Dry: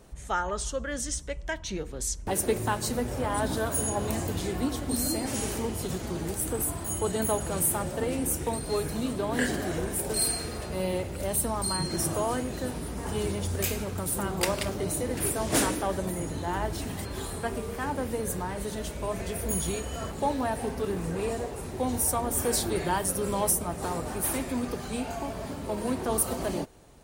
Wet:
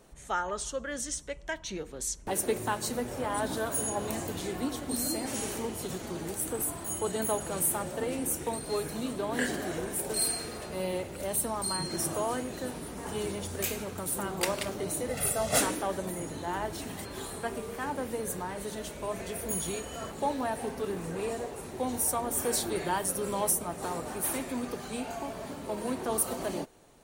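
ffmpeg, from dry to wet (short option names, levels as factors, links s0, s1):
-filter_complex "[0:a]asettb=1/sr,asplit=3[s0][s1][s2];[s0]atrim=end=15.084[s3];[s1]atrim=start=15.08:end=15.61,asetpts=PTS-STARTPTS,afade=t=in:d=0.004:c=qsin,afade=t=out:st=0.526:d=0.004:c=qsin,aecho=1:1:1.5:0.86,atrim=end_sample=23373[s4];[s2]atrim=start=15.606[s5];[s3][s4]acrossfade=d=0.004:c1=hsin:c2=qsin[s6];[s6][s5]acrossfade=d=0.004:c1=qsin:c2=hsin,equalizer=f=61:t=o:w=2.2:g=-10.5,bandreject=f=5000:w=20,volume=0.794"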